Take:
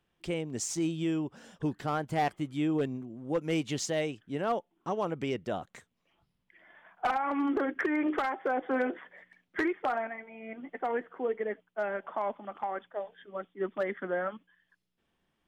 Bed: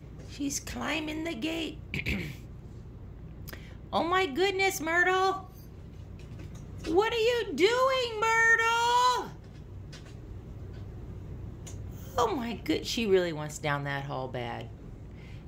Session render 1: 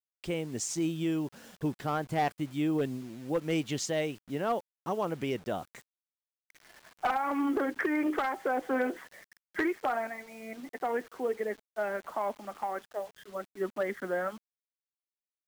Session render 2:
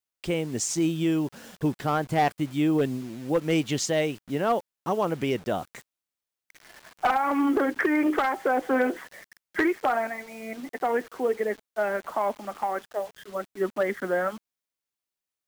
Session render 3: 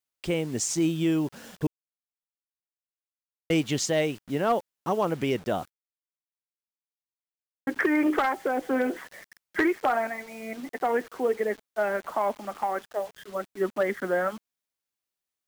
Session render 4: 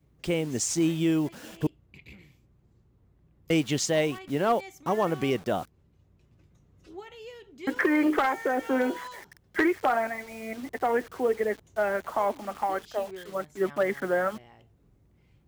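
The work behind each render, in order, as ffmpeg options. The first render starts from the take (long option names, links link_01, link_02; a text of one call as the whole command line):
ffmpeg -i in.wav -af "acrusher=bits=8:mix=0:aa=0.000001" out.wav
ffmpeg -i in.wav -af "volume=6dB" out.wav
ffmpeg -i in.wav -filter_complex "[0:a]asettb=1/sr,asplit=3[link_01][link_02][link_03];[link_01]atrim=end=8.334[link_04];[link_02]atrim=start=8.33:end=8.91,asetpts=PTS-STARTPTS,afade=type=in:duration=0.004:curve=qsin,afade=type=out:start_time=0.576:duration=0.004:curve=qsin,equalizer=frequency=1100:width=0.61:gain=-5.5[link_05];[link_03]atrim=start=8.906[link_06];[link_04][link_05]acrossfade=duration=0.004:curve1=hsin:curve2=qsin[link_07];[link_07][link_06]acrossfade=duration=0.004:curve1=qsin:curve2=hsin,asplit=5[link_08][link_09][link_10][link_11][link_12];[link_08]atrim=end=1.67,asetpts=PTS-STARTPTS,afade=type=out:start_time=1.666:duration=0.004:curve=hsin[link_13];[link_09]atrim=start=1.67:end=3.5,asetpts=PTS-STARTPTS,volume=0[link_14];[link_10]atrim=start=3.5:end=5.7,asetpts=PTS-STARTPTS,afade=type=in:duration=0.004:curve=hsin,afade=type=out:start_time=2.196:duration=0.004:curve=hsin[link_15];[link_11]atrim=start=5.7:end=7.67,asetpts=PTS-STARTPTS,volume=0[link_16];[link_12]atrim=start=7.67,asetpts=PTS-STARTPTS,afade=type=in:duration=0.004:curve=hsin[link_17];[link_13][link_14][link_15][link_16][link_17]concat=n=5:v=0:a=1" out.wav
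ffmpeg -i in.wav -i bed.wav -filter_complex "[1:a]volume=-18dB[link_01];[0:a][link_01]amix=inputs=2:normalize=0" out.wav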